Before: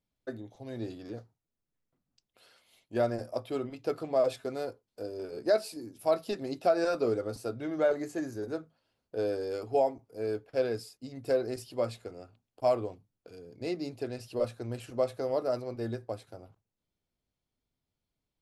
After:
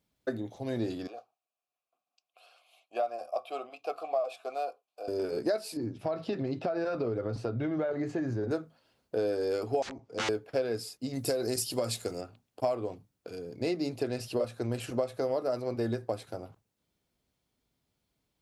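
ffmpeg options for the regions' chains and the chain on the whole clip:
-filter_complex "[0:a]asettb=1/sr,asplit=3[s0][s1][s2];[s0]atrim=end=1.074[s3];[s1]atrim=start=1.07:end=5.08,asetpts=PTS-STARTPTS,afade=t=in:d=0.004:c=qsin,afade=t=out:st=4.006:d=0.004:c=qsin,aemphasis=mode=production:type=riaa,acontrast=28,asplit=3[s4][s5][s6];[s4]bandpass=f=730:t=q:w=8,volume=1[s7];[s5]bandpass=f=1090:t=q:w=8,volume=0.501[s8];[s6]bandpass=f=2440:t=q:w=8,volume=0.355[s9];[s7][s8][s9]amix=inputs=3:normalize=0[s10];[s2]atrim=start=5.076[s11];[s3][s10]acrossfade=d=0.004:c1=hsin:c2=qsin[s12];[s12][s11]acrossfade=d=0.004:c1=qsin:c2=hsin,asettb=1/sr,asplit=3[s13][s14][s15];[s13]atrim=end=5.774[s16];[s14]atrim=start=5.77:end=8.51,asetpts=PTS-STARTPTS,afade=t=in:d=0.004:c=qsin,afade=t=out:st=2.736:d=0.004:c=qsin,lowpass=3300,equalizer=f=120:w=1.4:g=9.5,acompressor=threshold=0.0178:ratio=4:attack=3.2:release=140:knee=1:detection=peak[s17];[s15]atrim=start=8.506[s18];[s16][s17]acrossfade=d=0.004:c1=hsin:c2=qsin[s19];[s19][s18]acrossfade=d=0.004:c1=qsin:c2=hsin,asettb=1/sr,asplit=3[s20][s21][s22];[s20]atrim=end=9.824[s23];[s21]atrim=start=9.82:end=10.29,asetpts=PTS-STARTPTS,afade=t=in:d=0.004:c=qsin,afade=t=out:st=0.466:d=0.004:c=qsin,aeval=exprs='(mod(47.3*val(0)+1,2)-1)/47.3':c=same,lowpass=f=6900:w=0.5412,lowpass=f=6900:w=1.3066[s24];[s22]atrim=start=10.286[s25];[s23][s24]acrossfade=d=0.004:c1=hsin:c2=qsin[s26];[s26][s25]acrossfade=d=0.004:c1=qsin:c2=hsin,asettb=1/sr,asplit=3[s27][s28][s29];[s27]atrim=end=11.134[s30];[s28]atrim=start=11.13:end=12.21,asetpts=PTS-STARTPTS,afade=t=in:d=0.004:c=qsin,afade=t=out:st=1.076:d=0.004:c=qsin,bass=f=250:g=2,treble=f=4000:g=13,acompressor=threshold=0.0355:ratio=2.5:attack=3.2:release=140:knee=1:detection=peak[s31];[s29]atrim=start=12.206[s32];[s30][s31]acrossfade=d=0.004:c1=hsin:c2=qsin[s33];[s33][s32]acrossfade=d=0.004:c1=qsin:c2=hsin,highpass=45,equalizer=f=90:t=o:w=0.77:g=-3.5,acompressor=threshold=0.0178:ratio=6,volume=2.51"

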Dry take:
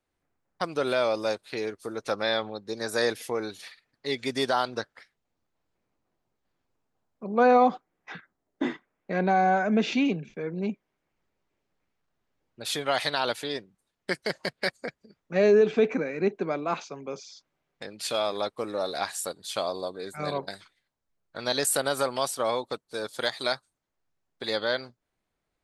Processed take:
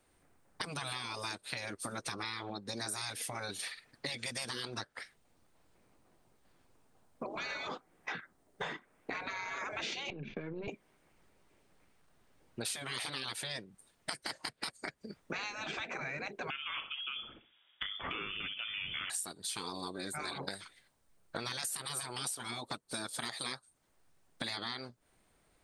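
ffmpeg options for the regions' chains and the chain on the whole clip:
-filter_complex "[0:a]asettb=1/sr,asplit=3[s0][s1][s2];[s0]atrim=end=10.104[s3];[s1]atrim=start=10.1:end=10.68,asetpts=PTS-STARTPTS,afade=t=in:d=0.004:c=qsin,afade=t=out:st=0.576:d=0.004:c=qsin,aeval=exprs='if(lt(val(0),0),0.708*val(0),val(0))':c=same,lowpass=f=4000:w=0.5412,lowpass=f=4000:w=1.3066,acompressor=threshold=0.00891:ratio=3:attack=3.2:release=140:knee=1:detection=peak[s4];[s2]atrim=start=10.676[s5];[s3][s4]acrossfade=d=0.004:c1=hsin:c2=qsin[s6];[s6][s5]acrossfade=d=0.004:c1=qsin:c2=hsin,asettb=1/sr,asplit=3[s7][s8][s9];[s7]atrim=end=16.504[s10];[s8]atrim=start=16.5:end=19.1,asetpts=PTS-STARTPTS,afade=t=in:d=0.004:c=qsin,afade=t=out:st=2.596:d=0.004:c=qsin,lowshelf=f=200:t=q:w=3:g=-11,aecho=1:1:62|124|186:0.188|0.0546|0.0158,atrim=end_sample=114660,lowpass=f=3100:t=q:w=0.5098,lowpass=f=3100:t=q:w=0.6013,lowpass=f=3100:t=q:w=0.9,lowpass=f=3100:t=q:w=2.563,afreqshift=-3700[s11];[s9]atrim=start=19.096[s12];[s10][s11]acrossfade=d=0.004:c1=hsin:c2=qsin[s13];[s13][s12]acrossfade=d=0.004:c1=qsin:c2=hsin,afftfilt=real='re*lt(hypot(re,im),0.0794)':imag='im*lt(hypot(re,im),0.0794)':win_size=1024:overlap=0.75,equalizer=f=8800:w=7.8:g=12.5,acompressor=threshold=0.00398:ratio=6,volume=3.35"

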